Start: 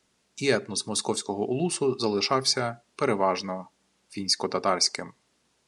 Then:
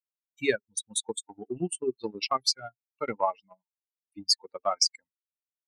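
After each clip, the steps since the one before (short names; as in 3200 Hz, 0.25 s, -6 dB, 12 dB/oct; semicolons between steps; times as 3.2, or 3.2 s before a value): per-bin expansion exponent 3; low shelf 270 Hz -7.5 dB; transient shaper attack +5 dB, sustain -11 dB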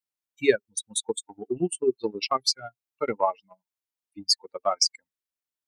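dynamic EQ 410 Hz, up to +5 dB, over -42 dBFS, Q 1.5; gain +1.5 dB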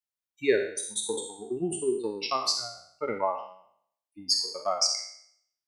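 spectral trails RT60 0.64 s; gain -5.5 dB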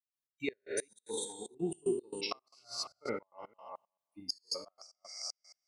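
reverse delay 0.221 s, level -7 dB; flipped gate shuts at -17 dBFS, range -28 dB; step gate ".x.x.xx.xxx" 113 bpm -24 dB; gain -4.5 dB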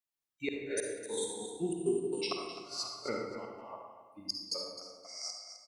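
feedback echo 0.259 s, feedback 18%, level -12 dB; on a send at -2 dB: reverb RT60 1.2 s, pre-delay 46 ms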